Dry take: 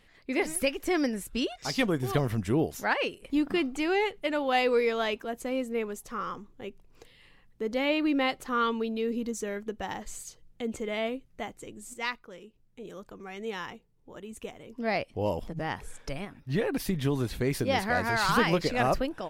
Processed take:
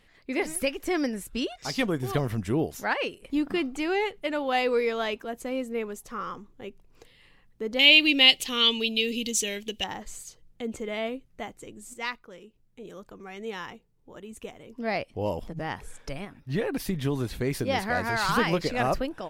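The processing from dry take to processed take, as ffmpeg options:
-filter_complex "[0:a]asettb=1/sr,asplit=3[s0][s1][s2];[s0]atrim=end=7.794[s3];[s1]atrim=start=7.79:end=9.84,asetpts=PTS-STARTPTS,afade=t=in:d=0.004:c=qsin,afade=t=out:st=2.046:d=0.004:c=qsin,highshelf=f=2000:t=q:w=3:g=13[s4];[s2]atrim=start=9.836[s5];[s3][s4]acrossfade=d=0.004:c1=hsin:c2=qsin[s6];[s6][s5]acrossfade=d=0.004:c1=qsin:c2=hsin"

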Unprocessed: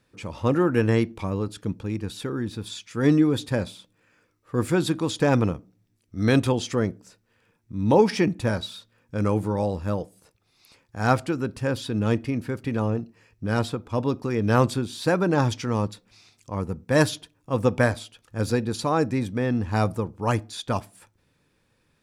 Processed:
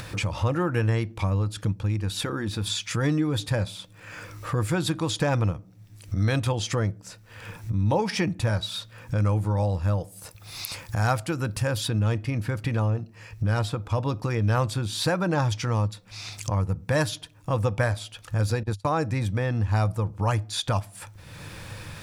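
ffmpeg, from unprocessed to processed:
-filter_complex "[0:a]asettb=1/sr,asplit=3[s0][s1][s2];[s0]atrim=end=2.014[s3];[s1]atrim=start=2.01:end=2.67,asetpts=PTS-STARTPTS,afade=t=in:d=0.004:c=qsin,afade=t=out:st=0.656:d=0.004:c=qsin,equalizer=f=120:t=o:w=0.28:g=-15[s4];[s2]atrim=start=2.666[s5];[s3][s4]acrossfade=d=0.004:c1=hsin:c2=qsin[s6];[s6][s5]acrossfade=d=0.004:c1=qsin:c2=hsin,asettb=1/sr,asplit=3[s7][s8][s9];[s7]atrim=end=10.014[s10];[s8]atrim=start=10.01:end=11.88,asetpts=PTS-STARTPTS,afade=t=in:d=0.004:c=qsin,afade=t=out:st=1.866:d=0.004:c=qsin,highshelf=f=8700:g=10.5[s11];[s9]atrim=start=11.876[s12];[s10][s11]acrossfade=d=0.004:c1=hsin:c2=qsin[s13];[s13][s12]acrossfade=d=0.004:c1=qsin:c2=hsin,asettb=1/sr,asplit=3[s14][s15][s16];[s14]atrim=end=18.634[s17];[s15]atrim=start=18.63:end=19.04,asetpts=PTS-STARTPTS,afade=t=in:d=0.004:c=qsin,afade=t=out:st=0.406:d=0.004:c=qsin,agate=range=0.0178:threshold=0.0355:ratio=16:release=100:detection=peak[s18];[s16]atrim=start=19.036[s19];[s17][s18]acrossfade=d=0.004:c1=hsin:c2=qsin[s20];[s20][s19]acrossfade=d=0.004:c1=qsin:c2=hsin,acompressor=mode=upward:threshold=0.0447:ratio=2.5,equalizer=f=100:t=o:w=0.33:g=8,equalizer=f=250:t=o:w=0.33:g=-11,equalizer=f=400:t=o:w=0.33:g=-10,acompressor=threshold=0.0316:ratio=2.5,volume=2"

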